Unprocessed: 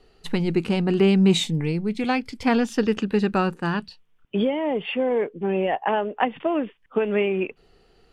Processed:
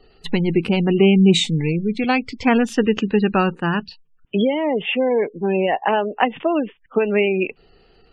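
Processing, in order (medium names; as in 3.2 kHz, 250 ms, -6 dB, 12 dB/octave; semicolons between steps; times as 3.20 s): spectral gate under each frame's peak -30 dB strong; peaking EQ 2.6 kHz +3.5 dB 0.77 oct; trim +4 dB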